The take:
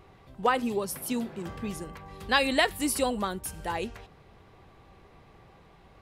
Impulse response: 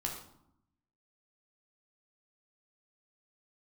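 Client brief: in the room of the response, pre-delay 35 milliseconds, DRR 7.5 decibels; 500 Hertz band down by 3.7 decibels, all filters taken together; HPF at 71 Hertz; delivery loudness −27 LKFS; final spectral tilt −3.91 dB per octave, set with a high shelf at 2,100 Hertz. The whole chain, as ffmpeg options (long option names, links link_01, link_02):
-filter_complex "[0:a]highpass=71,equalizer=frequency=500:width_type=o:gain=-4,highshelf=frequency=2100:gain=-6,asplit=2[link_01][link_02];[1:a]atrim=start_sample=2205,adelay=35[link_03];[link_02][link_03]afir=irnorm=-1:irlink=0,volume=-9dB[link_04];[link_01][link_04]amix=inputs=2:normalize=0,volume=4dB"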